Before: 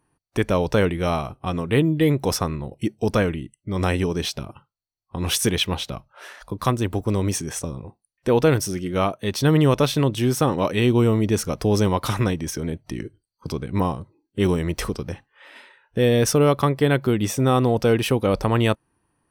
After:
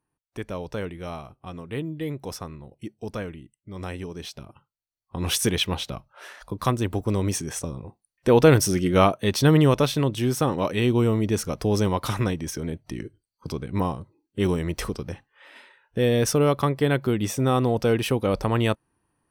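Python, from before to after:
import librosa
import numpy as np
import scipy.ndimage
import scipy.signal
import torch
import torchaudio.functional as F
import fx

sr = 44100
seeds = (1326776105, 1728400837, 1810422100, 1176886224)

y = fx.gain(x, sr, db=fx.line((4.14, -12.0), (5.19, -2.0), (7.8, -2.0), (8.87, 5.0), (9.97, -3.0)))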